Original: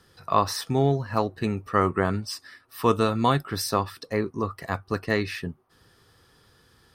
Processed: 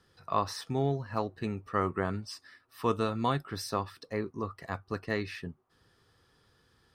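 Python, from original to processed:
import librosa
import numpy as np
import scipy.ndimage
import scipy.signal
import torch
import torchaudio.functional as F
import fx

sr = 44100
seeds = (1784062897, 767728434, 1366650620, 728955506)

y = fx.high_shelf(x, sr, hz=11000.0, db=-10.5)
y = y * 10.0 ** (-7.5 / 20.0)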